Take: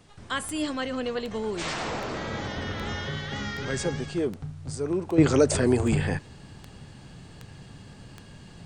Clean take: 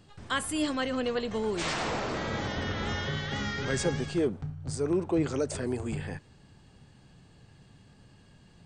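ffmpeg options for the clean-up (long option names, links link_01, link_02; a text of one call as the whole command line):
ffmpeg -i in.wav -af "adeclick=threshold=4,agate=range=-21dB:threshold=-39dB,asetnsamples=nb_out_samples=441:pad=0,asendcmd='5.18 volume volume -10dB',volume=0dB" out.wav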